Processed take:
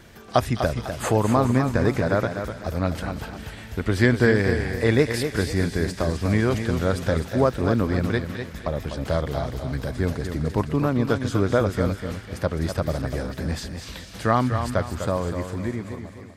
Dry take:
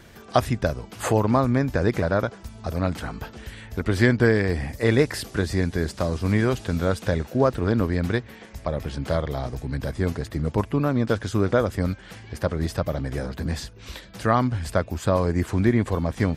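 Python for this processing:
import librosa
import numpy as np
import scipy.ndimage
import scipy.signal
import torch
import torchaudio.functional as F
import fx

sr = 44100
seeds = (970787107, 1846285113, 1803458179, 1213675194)

y = fx.fade_out_tail(x, sr, length_s=1.86)
y = fx.echo_wet_highpass(y, sr, ms=209, feedback_pct=63, hz=2100.0, wet_db=-9)
y = fx.echo_warbled(y, sr, ms=250, feedback_pct=36, rate_hz=2.8, cents=88, wet_db=-8.0)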